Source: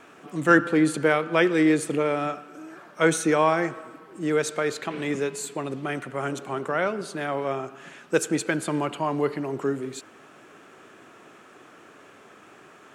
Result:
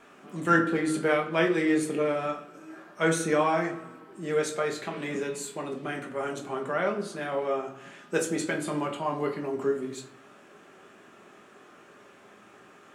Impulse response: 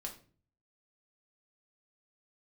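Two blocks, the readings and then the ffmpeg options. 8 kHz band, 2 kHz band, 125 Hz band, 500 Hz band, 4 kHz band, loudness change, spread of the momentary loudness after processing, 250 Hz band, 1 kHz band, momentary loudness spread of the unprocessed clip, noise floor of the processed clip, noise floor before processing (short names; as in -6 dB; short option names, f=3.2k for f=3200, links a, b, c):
-4.0 dB, -4.0 dB, -4.0 dB, -3.0 dB, -3.5 dB, -3.5 dB, 15 LU, -4.5 dB, -3.0 dB, 16 LU, -54 dBFS, -51 dBFS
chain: -filter_complex "[1:a]atrim=start_sample=2205[a];[0:a][a]afir=irnorm=-1:irlink=0,volume=-1dB"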